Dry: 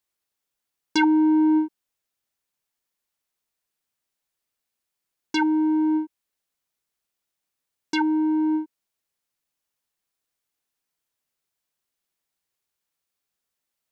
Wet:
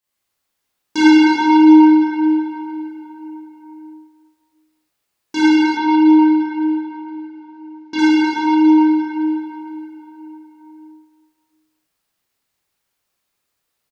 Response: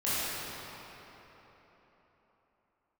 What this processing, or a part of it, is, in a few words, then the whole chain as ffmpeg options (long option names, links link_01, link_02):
cave: -filter_complex "[0:a]aecho=1:1:339:0.224[link_01];[1:a]atrim=start_sample=2205[link_02];[link_01][link_02]afir=irnorm=-1:irlink=0,asettb=1/sr,asplit=3[link_03][link_04][link_05];[link_03]atrim=end=5.774[link_06];[link_04]atrim=start=5.77:end=7.99,asetpts=PTS-STARTPTS,afade=type=in:duration=0.004:curve=qsin,afade=type=out:start_time=2.216:duration=0.004:curve=qsin,lowpass=frequency=5300:width=0.5412,lowpass=frequency=5300:width=1.3066[link_07];[link_05]atrim=start=7.986[link_08];[link_06][link_07]acrossfade=duration=0.004:curve1=hsin:curve2=qsin[link_09];[link_09][link_08]acrossfade=duration=0.004:curve1=qsin:curve2=hsin"